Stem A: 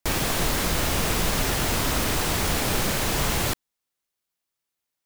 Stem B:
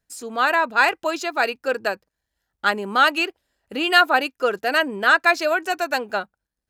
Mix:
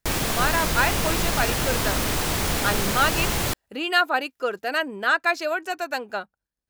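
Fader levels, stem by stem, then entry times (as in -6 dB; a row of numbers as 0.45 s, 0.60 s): 0.0 dB, -5.0 dB; 0.00 s, 0.00 s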